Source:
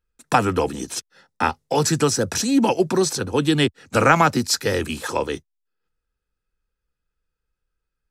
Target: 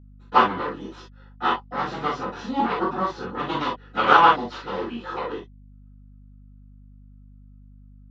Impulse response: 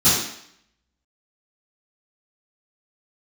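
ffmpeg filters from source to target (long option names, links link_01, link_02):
-filter_complex "[0:a]aeval=exprs='0.891*(cos(1*acos(clip(val(0)/0.891,-1,1)))-cos(1*PI/2))+0.251*(cos(4*acos(clip(val(0)/0.891,-1,1)))-cos(4*PI/2))+0.178*(cos(6*acos(clip(val(0)/0.891,-1,1)))-cos(6*PI/2))+0.224*(cos(7*acos(clip(val(0)/0.891,-1,1)))-cos(7*PI/2))':channel_layout=same,highpass=390,equalizer=frequency=680:width_type=q:width=4:gain=-4,equalizer=frequency=1000:width_type=q:width=4:gain=4,equalizer=frequency=1700:width_type=q:width=4:gain=-3,equalizer=frequency=2400:width_type=q:width=4:gain=-9,lowpass=frequency=2800:width=0.5412,lowpass=frequency=2800:width=1.3066[link_01];[1:a]atrim=start_sample=2205,atrim=end_sample=3969[link_02];[link_01][link_02]afir=irnorm=-1:irlink=0,aeval=exprs='val(0)+0.0316*(sin(2*PI*50*n/s)+sin(2*PI*2*50*n/s)/2+sin(2*PI*3*50*n/s)/3+sin(2*PI*4*50*n/s)/4+sin(2*PI*5*50*n/s)/5)':channel_layout=same,volume=-16.5dB"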